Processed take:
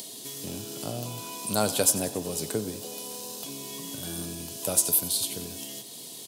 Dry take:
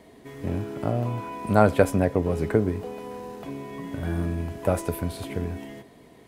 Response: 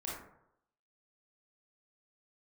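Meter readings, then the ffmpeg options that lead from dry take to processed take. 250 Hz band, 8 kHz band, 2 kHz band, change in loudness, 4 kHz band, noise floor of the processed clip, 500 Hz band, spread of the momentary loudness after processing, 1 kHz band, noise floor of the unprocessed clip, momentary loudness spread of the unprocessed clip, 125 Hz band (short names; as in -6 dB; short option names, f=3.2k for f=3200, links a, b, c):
-8.0 dB, +18.5 dB, -7.0 dB, -2.5 dB, +13.0 dB, -42 dBFS, -8.0 dB, 14 LU, -8.0 dB, -52 dBFS, 17 LU, -12.0 dB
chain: -filter_complex "[0:a]aexciter=amount=14.1:drive=6:freq=3.1k,acompressor=mode=upward:threshold=-24dB:ratio=2.5,highpass=f=110:w=0.5412,highpass=f=110:w=1.3066,asplit=2[a][b];[b]asplit=7[c][d][e][f][g][h][i];[c]adelay=92,afreqshift=44,volume=-16dB[j];[d]adelay=184,afreqshift=88,volume=-19.7dB[k];[e]adelay=276,afreqshift=132,volume=-23.5dB[l];[f]adelay=368,afreqshift=176,volume=-27.2dB[m];[g]adelay=460,afreqshift=220,volume=-31dB[n];[h]adelay=552,afreqshift=264,volume=-34.7dB[o];[i]adelay=644,afreqshift=308,volume=-38.5dB[p];[j][k][l][m][n][o][p]amix=inputs=7:normalize=0[q];[a][q]amix=inputs=2:normalize=0,volume=-8.5dB"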